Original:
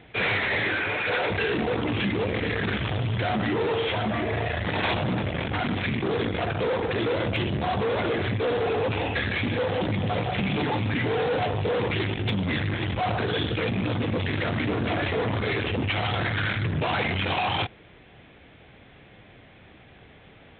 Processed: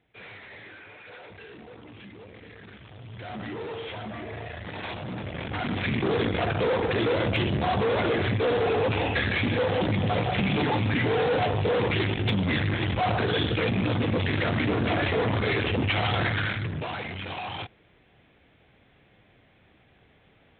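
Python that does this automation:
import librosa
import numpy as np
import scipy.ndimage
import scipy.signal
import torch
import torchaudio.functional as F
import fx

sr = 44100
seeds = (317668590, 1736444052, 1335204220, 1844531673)

y = fx.gain(x, sr, db=fx.line((2.89, -20.0), (3.4, -10.0), (4.98, -10.0), (6.0, 1.0), (16.26, 1.0), (17.02, -9.0)))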